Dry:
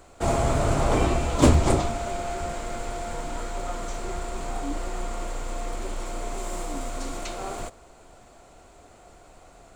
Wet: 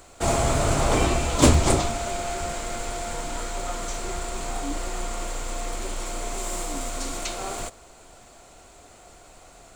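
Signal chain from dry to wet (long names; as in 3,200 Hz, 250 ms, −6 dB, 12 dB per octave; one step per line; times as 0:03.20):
high-shelf EQ 2,200 Hz +8 dB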